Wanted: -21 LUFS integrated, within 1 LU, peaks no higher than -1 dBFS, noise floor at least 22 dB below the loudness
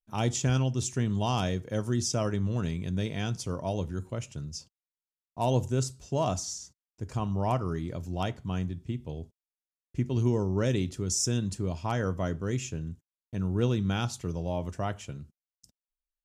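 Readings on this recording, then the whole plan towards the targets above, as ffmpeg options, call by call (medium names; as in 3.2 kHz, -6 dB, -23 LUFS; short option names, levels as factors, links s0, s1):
loudness -31.0 LUFS; peak level -14.5 dBFS; loudness target -21.0 LUFS
-> -af "volume=3.16"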